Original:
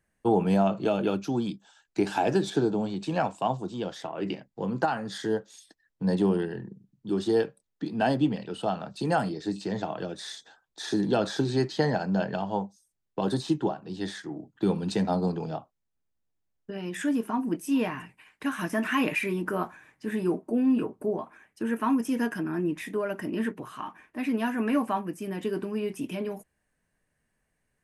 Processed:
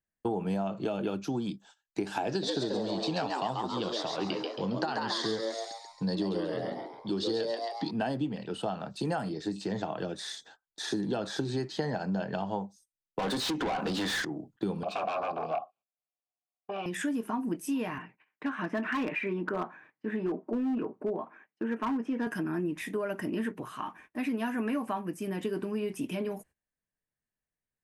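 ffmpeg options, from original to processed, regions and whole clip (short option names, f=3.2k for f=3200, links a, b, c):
-filter_complex "[0:a]asettb=1/sr,asplit=3[a][b][c];[a]atrim=end=2.294[d];[b]atrim=start=2.29:end=7.91,asetpts=PTS-STARTPTS,afade=t=in:d=0.004:c=qsin,afade=t=out:st=5.616:d=0.004:c=qsin,lowpass=8k,equalizer=f=4.4k:t=o:w=0.85:g=13,asplit=7[e][f][g][h][i][j][k];[f]adelay=136,afreqshift=120,volume=-4dB[l];[g]adelay=272,afreqshift=240,volume=-11.1dB[m];[h]adelay=408,afreqshift=360,volume=-18.3dB[n];[i]adelay=544,afreqshift=480,volume=-25.4dB[o];[j]adelay=680,afreqshift=600,volume=-32.5dB[p];[k]adelay=816,afreqshift=720,volume=-39.7dB[q];[e][l][m][n][o][p][q]amix=inputs=7:normalize=0,atrim=end_sample=247842[r];[c]atrim=start=7.906[s];[d][r]acrossfade=d=0.004:c1=hsin:c2=qsin[t];[t][s]acrossfade=d=0.004:c1=qsin:c2=hsin,asettb=1/sr,asplit=3[u][v][w];[u]atrim=end=13.194[x];[v]atrim=start=13.19:end=14.25,asetpts=PTS-STARTPTS,afade=t=in:d=0.004:c=qsin,afade=t=out:st=1.056:d=0.004:c=qsin,acompressor=threshold=-38dB:ratio=4:attack=3.2:release=140:knee=1:detection=peak,aecho=1:1:4:0.37,atrim=end_sample=46746,asplit=2[y][z];[z]highpass=f=720:p=1,volume=32dB,asoftclip=type=tanh:threshold=-21dB[aa];[y][aa]amix=inputs=2:normalize=0,lowpass=f=3.7k:p=1,volume=-6dB[ab];[w]atrim=start=14.246[ac];[x][ab]acrossfade=d=0.004:c1=hsin:c2=qsin[ad];[ad][ac]acrossfade=d=0.004:c1=qsin:c2=hsin,asettb=1/sr,asplit=3[ae][af][ag];[ae]atrim=end=14.834[ah];[af]atrim=start=14.83:end=16.86,asetpts=PTS-STARTPTS,afade=t=in:d=0.004:c=qsin,afade=t=out:st=2.026:d=0.004:c=qsin,aeval=exprs='0.168*sin(PI/2*5.62*val(0)/0.168)':c=same,asplit=3[ai][aj][ak];[ai]bandpass=f=730:t=q:w=8,volume=0dB[al];[aj]bandpass=f=1.09k:t=q:w=8,volume=-6dB[am];[ak]bandpass=f=2.44k:t=q:w=8,volume=-9dB[an];[al][am][an]amix=inputs=3:normalize=0[ao];[ag]atrim=start=16.856[ap];[ah][ao]acrossfade=d=0.004:c1=hsin:c2=qsin[aq];[aq][ap]acrossfade=d=0.004:c1=qsin:c2=hsin,asettb=1/sr,asplit=3[ar][as][at];[ar]atrim=end=17.984[au];[as]atrim=start=17.98:end=22.27,asetpts=PTS-STARTPTS,afade=t=in:d=0.004:c=qsin,afade=t=out:st=4.286:d=0.004:c=qsin,highpass=180,lowpass=2.3k,asoftclip=type=hard:threshold=-22dB[av];[at]atrim=start=22.266[aw];[au][av]acrossfade=d=0.004:c1=hsin:c2=qsin[ax];[ax][aw]acrossfade=d=0.004:c1=qsin:c2=hsin,agate=range=-18dB:threshold=-54dB:ratio=16:detection=peak,acompressor=threshold=-28dB:ratio=6"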